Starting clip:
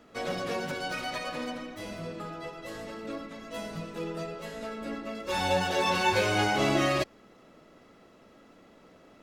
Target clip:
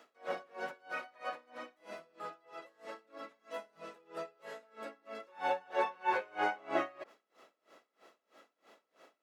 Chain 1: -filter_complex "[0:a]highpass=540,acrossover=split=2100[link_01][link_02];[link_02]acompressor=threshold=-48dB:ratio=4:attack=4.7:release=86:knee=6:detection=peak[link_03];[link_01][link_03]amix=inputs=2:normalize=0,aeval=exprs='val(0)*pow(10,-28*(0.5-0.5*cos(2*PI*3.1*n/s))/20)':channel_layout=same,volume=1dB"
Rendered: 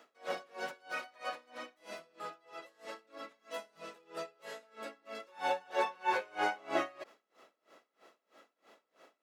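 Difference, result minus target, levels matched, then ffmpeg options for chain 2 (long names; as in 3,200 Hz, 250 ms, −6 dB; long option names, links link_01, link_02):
downward compressor: peak gain reduction −8.5 dB
-filter_complex "[0:a]highpass=540,acrossover=split=2100[link_01][link_02];[link_02]acompressor=threshold=-59.5dB:ratio=4:attack=4.7:release=86:knee=6:detection=peak[link_03];[link_01][link_03]amix=inputs=2:normalize=0,aeval=exprs='val(0)*pow(10,-28*(0.5-0.5*cos(2*PI*3.1*n/s))/20)':channel_layout=same,volume=1dB"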